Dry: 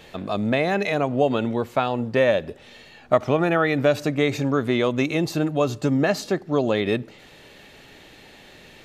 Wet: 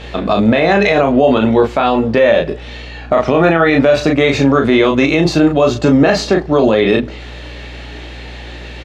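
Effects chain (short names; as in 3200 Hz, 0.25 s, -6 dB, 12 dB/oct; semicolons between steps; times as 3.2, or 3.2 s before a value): BPF 160–5200 Hz; hum 60 Hz, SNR 24 dB; early reflections 19 ms -9 dB, 36 ms -5.5 dB; maximiser +14 dB; gain -1 dB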